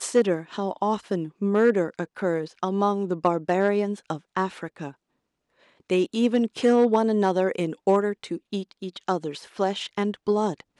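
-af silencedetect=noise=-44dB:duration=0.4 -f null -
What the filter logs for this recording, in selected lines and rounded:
silence_start: 4.92
silence_end: 5.89 | silence_duration: 0.97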